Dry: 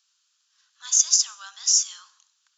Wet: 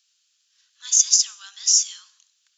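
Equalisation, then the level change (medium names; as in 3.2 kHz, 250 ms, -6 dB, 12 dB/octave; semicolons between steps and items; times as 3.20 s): high-pass 860 Hz 6 dB/octave; resonant high shelf 1.6 kHz +6.5 dB, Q 1.5; -4.5 dB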